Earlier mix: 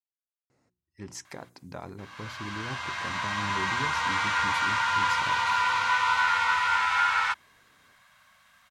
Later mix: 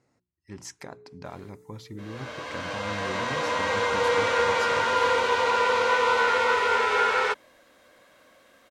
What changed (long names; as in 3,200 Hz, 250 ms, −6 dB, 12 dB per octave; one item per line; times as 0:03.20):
speech: entry −0.50 s
first sound: unmuted
second sound: remove Chebyshev band-stop filter 150–1,000 Hz, order 2